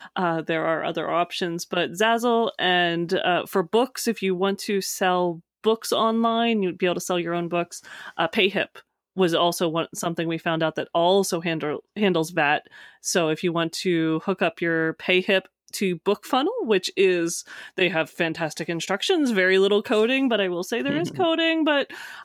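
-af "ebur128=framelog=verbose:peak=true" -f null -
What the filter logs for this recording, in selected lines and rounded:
Integrated loudness:
  I:         -23.1 LUFS
  Threshold: -33.3 LUFS
Loudness range:
  LRA:         2.3 LU
  Threshold: -43.3 LUFS
  LRA low:   -24.4 LUFS
  LRA high:  -22.0 LUFS
True peak:
  Peak:       -6.0 dBFS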